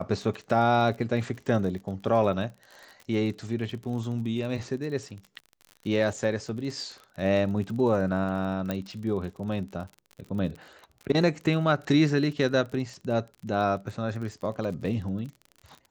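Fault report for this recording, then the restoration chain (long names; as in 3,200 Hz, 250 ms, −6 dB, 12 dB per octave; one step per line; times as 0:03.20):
surface crackle 42 per second −36 dBFS
0:08.71: click −16 dBFS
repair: click removal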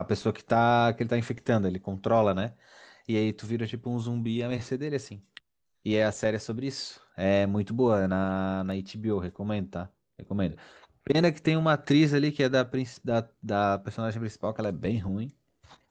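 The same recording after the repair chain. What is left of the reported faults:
0:08.71: click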